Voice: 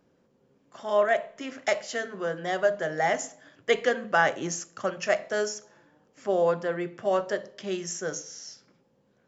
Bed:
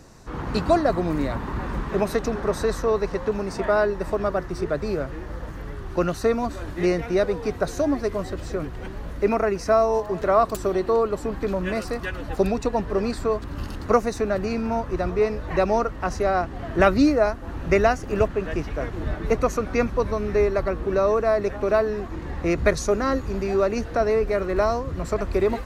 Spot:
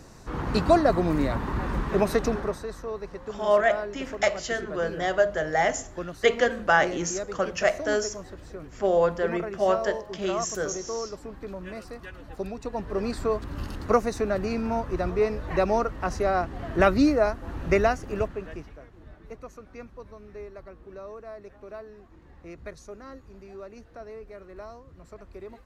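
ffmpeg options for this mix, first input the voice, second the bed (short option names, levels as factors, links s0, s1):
-filter_complex "[0:a]adelay=2550,volume=1.26[s0];[1:a]volume=2.99,afade=t=out:st=2.31:d=0.29:silence=0.251189,afade=t=in:st=12.57:d=0.64:silence=0.334965,afade=t=out:st=17.73:d=1.1:silence=0.125893[s1];[s0][s1]amix=inputs=2:normalize=0"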